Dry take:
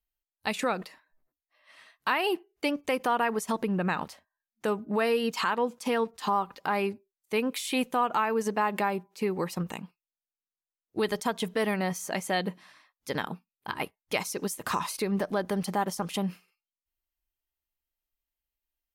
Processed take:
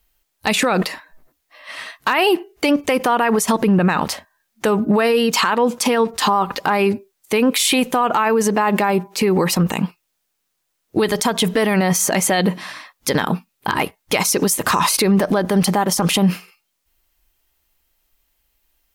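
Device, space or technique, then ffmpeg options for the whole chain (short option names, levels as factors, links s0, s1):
loud club master: -af "acompressor=threshold=0.0398:ratio=3,asoftclip=type=hard:threshold=0.0891,alimiter=level_in=29.9:limit=0.891:release=50:level=0:latency=1,volume=0.447"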